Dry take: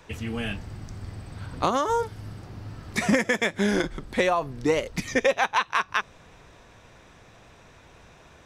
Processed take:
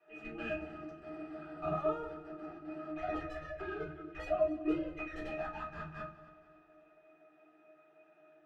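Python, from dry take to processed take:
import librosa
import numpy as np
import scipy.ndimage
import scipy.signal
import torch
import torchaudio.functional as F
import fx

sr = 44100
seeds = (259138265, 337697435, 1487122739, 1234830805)

y = fx.sine_speech(x, sr, at=(2.91, 5.15))
y = scipy.signal.sosfilt(scipy.signal.butter(4, 310.0, 'highpass', fs=sr, output='sos'), y)
y = fx.peak_eq(y, sr, hz=1900.0, db=12.5, octaves=0.42)
y = fx.level_steps(y, sr, step_db=16)
y = fx.tube_stage(y, sr, drive_db=33.0, bias=0.3)
y = fx.octave_resonator(y, sr, note='D#', decay_s=0.14)
y = fx.echo_heads(y, sr, ms=92, heads='second and third', feedback_pct=46, wet_db=-17.5)
y = fx.room_shoebox(y, sr, seeds[0], volume_m3=130.0, walls='furnished', distance_m=3.8)
y = y * librosa.db_to_amplitude(7.0)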